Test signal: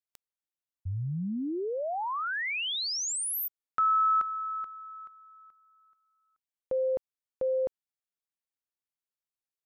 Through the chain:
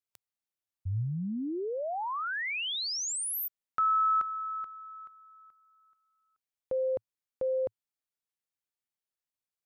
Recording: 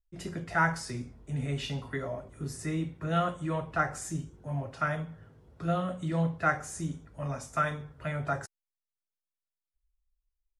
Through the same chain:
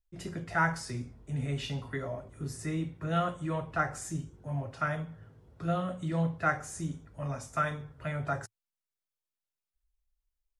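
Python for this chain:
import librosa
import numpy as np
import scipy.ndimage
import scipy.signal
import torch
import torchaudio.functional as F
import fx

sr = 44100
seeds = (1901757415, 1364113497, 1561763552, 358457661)

y = fx.peak_eq(x, sr, hz=110.0, db=4.0, octaves=0.43)
y = F.gain(torch.from_numpy(y), -1.5).numpy()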